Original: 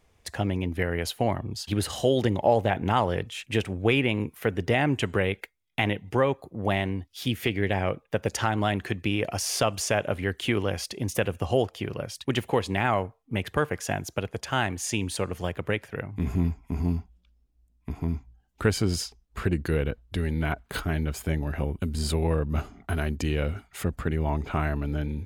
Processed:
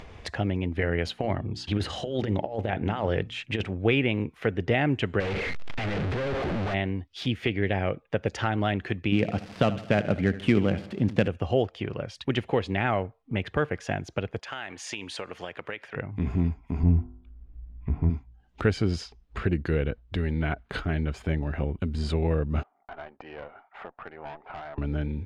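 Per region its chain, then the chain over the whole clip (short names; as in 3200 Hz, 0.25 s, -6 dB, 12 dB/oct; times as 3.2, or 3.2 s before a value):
0.76–3.7 negative-ratio compressor -25 dBFS, ratio -0.5 + notches 60/120/180/240/300/360 Hz
5.2–6.74 infinite clipping + high shelf 4700 Hz -11 dB
9.12–11.28 switching dead time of 0.1 ms + bell 190 Hz +10 dB 1.1 oct + feedback echo 76 ms, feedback 52%, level -15 dB
14.39–15.96 HPF 960 Hz 6 dB/oct + compressor 2.5:1, threshold -32 dBFS
16.83–18.1 LPF 2200 Hz + low shelf 120 Hz +12 dB + de-hum 50.03 Hz, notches 34
22.63–24.78 ladder band-pass 910 Hz, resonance 50% + tube stage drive 40 dB, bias 0.65 + mismatched tape noise reduction decoder only
whole clip: LPF 3600 Hz 12 dB/oct; upward compressor, threshold -29 dBFS; dynamic EQ 1000 Hz, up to -6 dB, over -44 dBFS, Q 2.9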